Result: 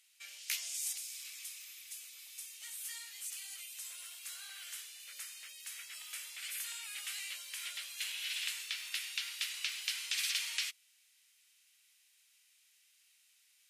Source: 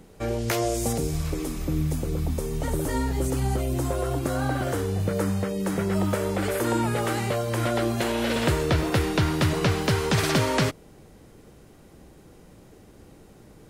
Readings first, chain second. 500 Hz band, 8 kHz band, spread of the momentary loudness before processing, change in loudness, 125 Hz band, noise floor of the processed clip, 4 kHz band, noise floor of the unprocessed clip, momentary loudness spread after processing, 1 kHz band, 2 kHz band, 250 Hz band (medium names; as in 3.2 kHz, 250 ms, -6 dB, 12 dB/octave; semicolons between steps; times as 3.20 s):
under -40 dB, -4.5 dB, 5 LU, -14.0 dB, under -40 dB, -70 dBFS, -4.5 dB, -51 dBFS, 11 LU, -30.5 dB, -10.5 dB, under -40 dB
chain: Chebyshev high-pass 2.5 kHz, order 3; trim -3.5 dB; MP3 112 kbps 32 kHz